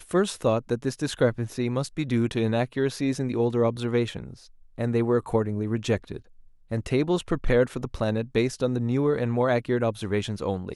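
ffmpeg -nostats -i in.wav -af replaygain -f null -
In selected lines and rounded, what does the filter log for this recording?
track_gain = +5.9 dB
track_peak = 0.245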